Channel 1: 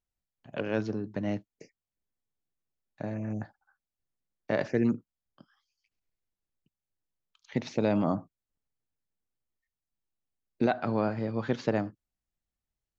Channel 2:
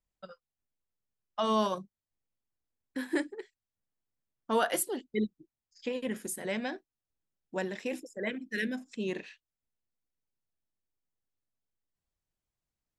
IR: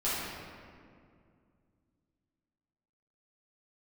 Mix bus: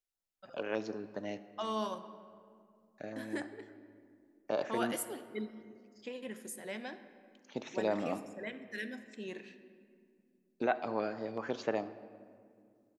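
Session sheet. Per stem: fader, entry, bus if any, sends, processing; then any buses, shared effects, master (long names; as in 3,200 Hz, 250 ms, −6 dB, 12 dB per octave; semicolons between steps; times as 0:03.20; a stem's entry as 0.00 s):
−1.0 dB, 0.00 s, send −21 dB, parametric band 120 Hz −11.5 dB 2.6 octaves; notch on a step sequencer 8 Hz 980–4,700 Hz
−8.0 dB, 0.20 s, send −18 dB, no processing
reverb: on, RT60 2.2 s, pre-delay 5 ms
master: low-shelf EQ 150 Hz −10.5 dB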